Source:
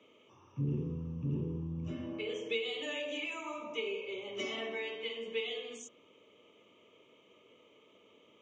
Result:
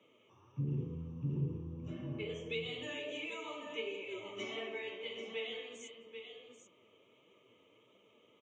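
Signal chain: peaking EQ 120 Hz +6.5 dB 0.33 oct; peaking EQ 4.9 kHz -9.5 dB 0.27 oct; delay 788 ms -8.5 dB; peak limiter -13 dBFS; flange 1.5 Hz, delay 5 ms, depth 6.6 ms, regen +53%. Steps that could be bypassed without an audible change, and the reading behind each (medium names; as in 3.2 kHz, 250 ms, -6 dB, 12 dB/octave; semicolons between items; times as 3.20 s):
peak limiter -13 dBFS: peak at its input -22.0 dBFS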